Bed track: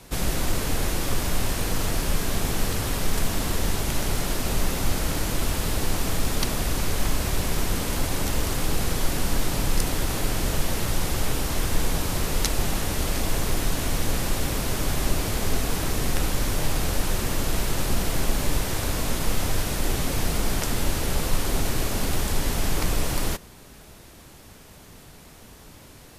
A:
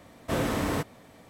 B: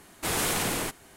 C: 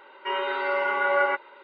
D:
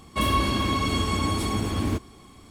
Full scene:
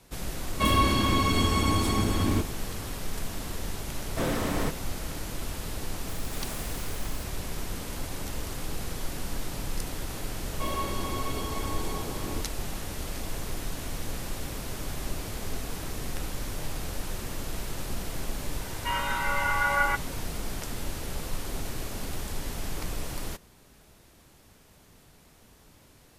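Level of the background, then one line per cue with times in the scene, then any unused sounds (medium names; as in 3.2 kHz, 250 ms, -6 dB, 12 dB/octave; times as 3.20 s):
bed track -9.5 dB
0.44 s: add D
3.88 s: add A -1.5 dB
6.08 s: add B -15.5 dB + zero-crossing glitches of -28.5 dBFS
10.44 s: add D -12.5 dB + high-order bell 610 Hz +8 dB
18.60 s: add C -0.5 dB + high-pass 760 Hz 24 dB/octave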